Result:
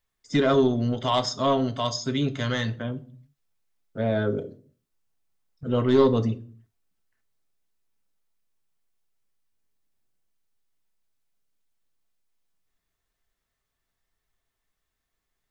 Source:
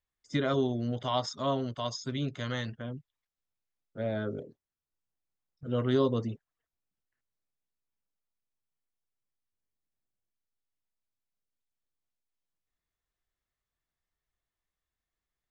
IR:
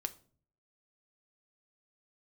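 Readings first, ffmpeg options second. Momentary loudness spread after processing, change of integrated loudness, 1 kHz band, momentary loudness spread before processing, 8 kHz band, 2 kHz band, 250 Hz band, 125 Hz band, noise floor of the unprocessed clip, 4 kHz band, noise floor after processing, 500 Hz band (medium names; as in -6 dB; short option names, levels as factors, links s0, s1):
15 LU, +7.5 dB, +7.5 dB, 15 LU, no reading, +7.5 dB, +7.5 dB, +6.5 dB, under -85 dBFS, +7.5 dB, -82 dBFS, +8.0 dB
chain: -filter_complex "[0:a]asoftclip=type=tanh:threshold=0.1[s0];[1:a]atrim=start_sample=2205,afade=t=out:st=0.41:d=0.01,atrim=end_sample=18522[s1];[s0][s1]afir=irnorm=-1:irlink=0,volume=2.82"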